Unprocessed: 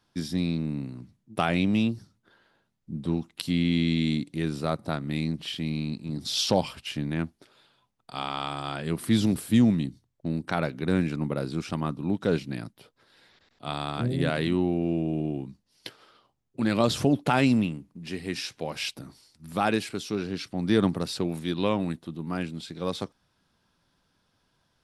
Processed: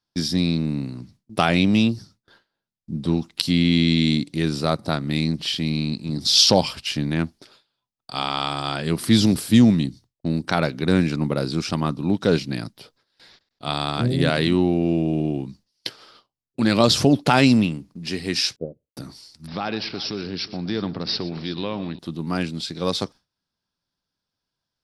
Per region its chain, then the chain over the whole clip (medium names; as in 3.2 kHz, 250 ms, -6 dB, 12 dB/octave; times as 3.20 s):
18.56–18.97 s: steep low-pass 560 Hz 48 dB/octave + upward expansion 2.5:1, over -45 dBFS
19.47–21.99 s: compression 2:1, threshold -35 dBFS + multi-tap echo 119/369 ms -16.5/-17.5 dB + careless resampling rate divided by 4×, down none, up filtered
whole clip: gate with hold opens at -48 dBFS; peaking EQ 4.9 kHz +9 dB 0.77 oct; trim +6 dB